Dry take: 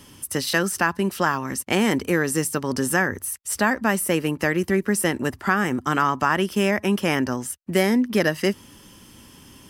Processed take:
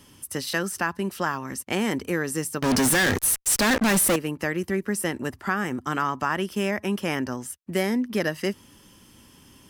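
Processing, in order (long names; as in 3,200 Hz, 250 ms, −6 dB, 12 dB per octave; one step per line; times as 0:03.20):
0:02.62–0:04.16: fuzz pedal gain 34 dB, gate −40 dBFS
level −5 dB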